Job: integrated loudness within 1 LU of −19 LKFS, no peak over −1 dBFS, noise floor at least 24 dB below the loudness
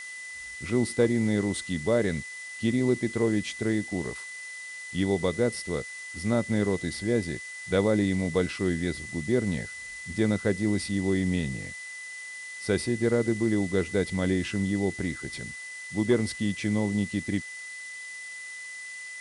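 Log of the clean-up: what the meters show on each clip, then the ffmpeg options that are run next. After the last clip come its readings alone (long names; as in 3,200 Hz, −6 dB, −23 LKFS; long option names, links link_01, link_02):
interfering tone 2,000 Hz; level of the tone −38 dBFS; background noise floor −40 dBFS; target noise floor −53 dBFS; integrated loudness −28.5 LKFS; sample peak −11.5 dBFS; target loudness −19.0 LKFS
→ -af "bandreject=frequency=2000:width=30"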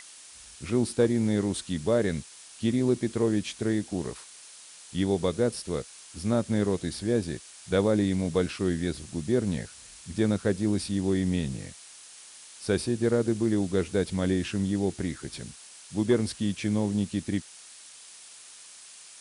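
interfering tone none found; background noise floor −49 dBFS; target noise floor −52 dBFS
→ -af "afftdn=noise_reduction=6:noise_floor=-49"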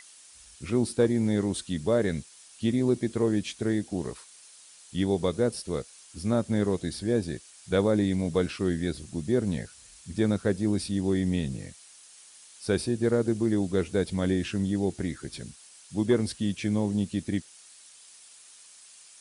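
background noise floor −53 dBFS; integrated loudness −28.0 LKFS; sample peak −12.0 dBFS; target loudness −19.0 LKFS
→ -af "volume=9dB"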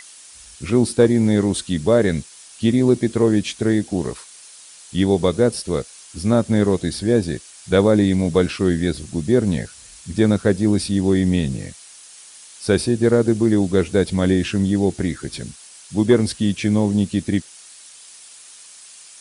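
integrated loudness −19.0 LKFS; sample peak −3.0 dBFS; background noise floor −44 dBFS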